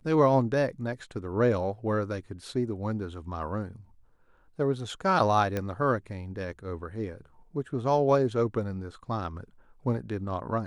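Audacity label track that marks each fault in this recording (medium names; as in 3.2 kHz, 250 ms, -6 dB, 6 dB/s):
5.570000	5.570000	pop -17 dBFS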